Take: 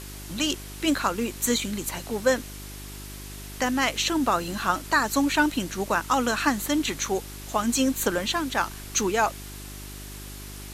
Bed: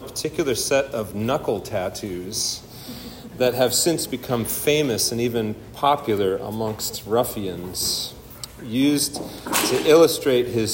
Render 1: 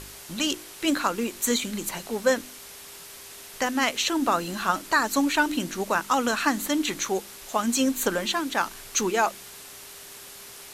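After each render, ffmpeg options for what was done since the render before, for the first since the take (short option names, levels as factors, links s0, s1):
-af "bandreject=f=50:t=h:w=4,bandreject=f=100:t=h:w=4,bandreject=f=150:t=h:w=4,bandreject=f=200:t=h:w=4,bandreject=f=250:t=h:w=4,bandreject=f=300:t=h:w=4,bandreject=f=350:t=h:w=4"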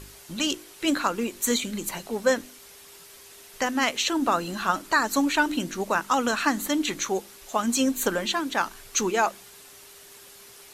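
-af "afftdn=nr=6:nf=-44"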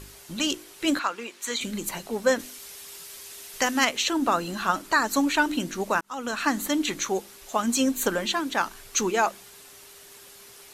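-filter_complex "[0:a]asettb=1/sr,asplit=3[s0][s1][s2];[s0]atrim=end=0.994[s3];[s1]atrim=start=0.99:end=1.61,asetpts=PTS-STARTPTS,afade=t=in:d=0.004:c=qsin,afade=t=out:st=0.616:d=0.004:c=qsin,bandpass=f=2100:t=q:w=0.51[s4];[s2]atrim=start=1.606[s5];[s3][s4]acrossfade=d=0.004:c1=hsin:c2=qsin[s6];[s6][s5]acrossfade=d=0.004:c1=qsin:c2=hsin,asettb=1/sr,asplit=3[s7][s8][s9];[s7]atrim=end=2.394[s10];[s8]atrim=start=2.39:end=3.85,asetpts=PTS-STARTPTS,afade=t=in:d=0.004:c=qsin,afade=t=out:st=1.456:d=0.004:c=qsin,highshelf=f=2200:g=7[s11];[s9]atrim=start=3.846[s12];[s10][s11]acrossfade=d=0.004:c1=hsin:c2=qsin[s13];[s13][s12]acrossfade=d=0.004:c1=qsin:c2=hsin,asplit=2[s14][s15];[s14]atrim=end=6.01,asetpts=PTS-STARTPTS,afade=t=out:st=6.006:d=0.004:c=hsin[s16];[s15]atrim=start=6.01,asetpts=PTS-STARTPTS,afade=t=in:d=0.52[s17];[s16][s17]concat=n=2:v=0:a=1"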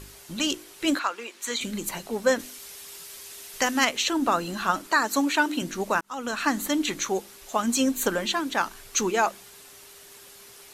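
-filter_complex "[0:a]asettb=1/sr,asplit=3[s0][s1][s2];[s0]atrim=end=0.954[s3];[s1]atrim=start=0.95:end=1.35,asetpts=PTS-STARTPTS,afade=t=in:d=0.004:c=qsin,afade=t=out:st=0.396:d=0.004:c=qsin,highpass=310[s4];[s2]atrim=start=1.346[s5];[s3][s4]acrossfade=d=0.004:c1=hsin:c2=qsin[s6];[s6][s5]acrossfade=d=0.004:c1=qsin:c2=hsin,asettb=1/sr,asplit=3[s7][s8][s9];[s7]atrim=end=4.874[s10];[s8]atrim=start=4.87:end=5.62,asetpts=PTS-STARTPTS,afade=t=in:d=0.004:c=qsin,afade=t=out:st=0.746:d=0.004:c=qsin,highpass=200[s11];[s9]atrim=start=5.616[s12];[s10][s11]acrossfade=d=0.004:c1=hsin:c2=qsin[s13];[s13][s12]acrossfade=d=0.004:c1=qsin:c2=hsin"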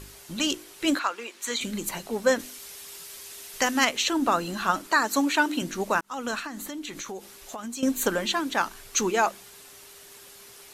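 -filter_complex "[0:a]asettb=1/sr,asplit=3[s0][s1][s2];[s0]atrim=end=6.394[s3];[s1]atrim=start=6.39:end=7.83,asetpts=PTS-STARTPTS,afade=t=in:d=0.004:c=qsin,afade=t=out:st=1.436:d=0.004:c=qsin,acompressor=threshold=0.0224:ratio=6:attack=3.2:release=140:knee=1:detection=peak[s4];[s2]atrim=start=7.826[s5];[s3][s4]acrossfade=d=0.004:c1=hsin:c2=qsin[s6];[s6][s5]acrossfade=d=0.004:c1=qsin:c2=hsin"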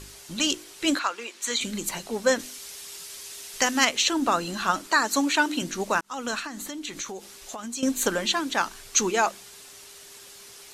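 -af "lowpass=6400,aemphasis=mode=production:type=50fm"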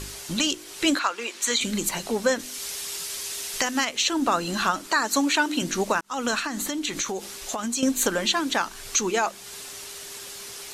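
-filter_complex "[0:a]asplit=2[s0][s1];[s1]acompressor=threshold=0.0224:ratio=6,volume=1.41[s2];[s0][s2]amix=inputs=2:normalize=0,alimiter=limit=0.299:level=0:latency=1:release=328"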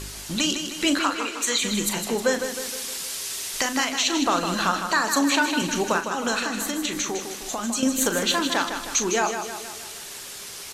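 -filter_complex "[0:a]asplit=2[s0][s1];[s1]adelay=39,volume=0.316[s2];[s0][s2]amix=inputs=2:normalize=0,asplit=2[s3][s4];[s4]aecho=0:1:156|312|468|624|780|936:0.422|0.223|0.118|0.0628|0.0333|0.0176[s5];[s3][s5]amix=inputs=2:normalize=0"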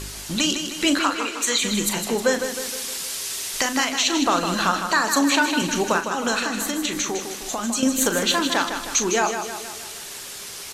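-af "volume=1.26"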